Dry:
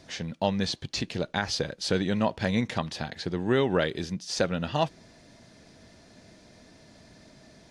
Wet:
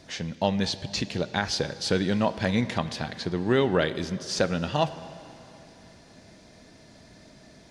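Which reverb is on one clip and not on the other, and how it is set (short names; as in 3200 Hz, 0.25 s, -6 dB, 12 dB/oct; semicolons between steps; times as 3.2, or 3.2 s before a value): plate-style reverb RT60 3.2 s, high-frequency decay 0.85×, DRR 13.5 dB; gain +1.5 dB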